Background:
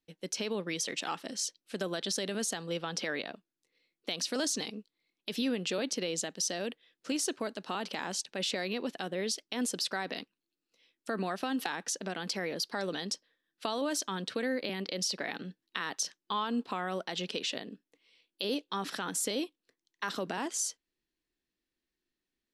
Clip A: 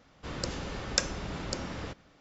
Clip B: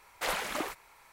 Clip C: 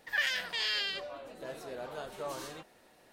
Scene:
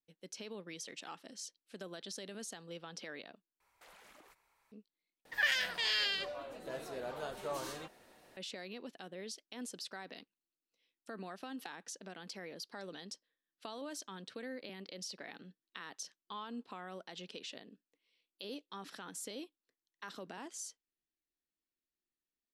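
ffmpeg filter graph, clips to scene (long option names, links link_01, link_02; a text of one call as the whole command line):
ffmpeg -i bed.wav -i cue0.wav -i cue1.wav -i cue2.wav -filter_complex "[0:a]volume=-12dB[link_01];[2:a]acompressor=threshold=-36dB:ratio=8:attack=0.3:release=117:knee=6:detection=rms[link_02];[link_01]asplit=3[link_03][link_04][link_05];[link_03]atrim=end=3.604[link_06];[link_02]atrim=end=1.12,asetpts=PTS-STARTPTS,volume=-17dB[link_07];[link_04]atrim=start=4.716:end=5.254[link_08];[3:a]atrim=end=3.12,asetpts=PTS-STARTPTS,volume=-0.5dB[link_09];[link_05]atrim=start=8.366[link_10];[link_06][link_07]acrossfade=duration=0.004:curve1=hsin:curve2=hsin[link_11];[link_11][link_08]acrossfade=duration=0.004:curve1=hsin:curve2=hsin[link_12];[link_12][link_09]acrossfade=duration=0.004:curve1=hsin:curve2=hsin[link_13];[link_13][link_10]acrossfade=duration=0.004:curve1=hsin:curve2=hsin" out.wav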